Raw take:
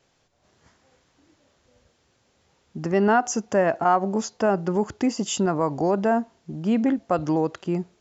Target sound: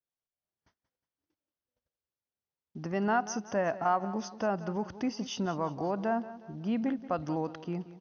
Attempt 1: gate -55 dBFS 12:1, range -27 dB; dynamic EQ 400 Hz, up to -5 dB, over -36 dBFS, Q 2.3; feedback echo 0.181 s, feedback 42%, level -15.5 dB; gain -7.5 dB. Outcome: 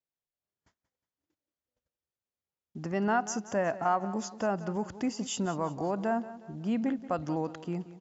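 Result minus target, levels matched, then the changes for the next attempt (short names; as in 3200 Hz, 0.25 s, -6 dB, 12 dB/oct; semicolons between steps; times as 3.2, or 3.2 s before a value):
8000 Hz band +4.0 dB
add after dynamic EQ: Chebyshev low-pass 6300 Hz, order 10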